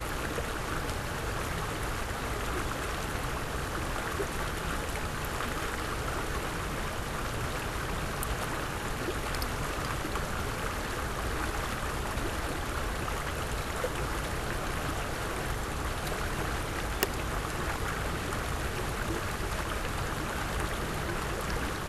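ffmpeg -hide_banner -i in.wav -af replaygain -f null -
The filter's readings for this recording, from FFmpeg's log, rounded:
track_gain = +18.2 dB
track_peak = 0.317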